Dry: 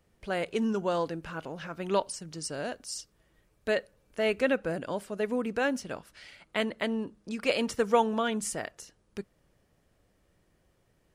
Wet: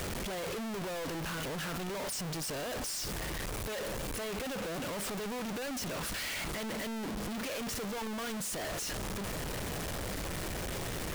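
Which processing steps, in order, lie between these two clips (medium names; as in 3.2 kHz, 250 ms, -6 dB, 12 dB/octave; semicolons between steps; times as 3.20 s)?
one-bit comparator; trim -4.5 dB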